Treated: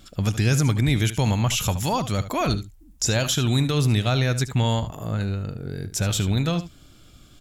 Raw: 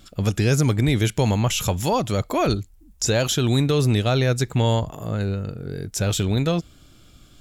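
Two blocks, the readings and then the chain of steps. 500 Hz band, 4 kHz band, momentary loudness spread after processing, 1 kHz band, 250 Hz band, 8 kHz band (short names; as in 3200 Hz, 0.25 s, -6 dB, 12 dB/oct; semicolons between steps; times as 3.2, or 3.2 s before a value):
-5.5 dB, 0.0 dB, 8 LU, -1.5 dB, -2.0 dB, 0.0 dB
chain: dynamic EQ 440 Hz, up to -7 dB, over -35 dBFS, Q 1.2; on a send: echo 74 ms -13.5 dB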